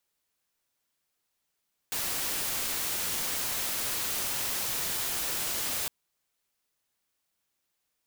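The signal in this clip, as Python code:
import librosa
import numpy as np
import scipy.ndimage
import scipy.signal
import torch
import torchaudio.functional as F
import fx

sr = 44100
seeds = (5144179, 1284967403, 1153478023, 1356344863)

y = fx.noise_colour(sr, seeds[0], length_s=3.96, colour='white', level_db=-31.5)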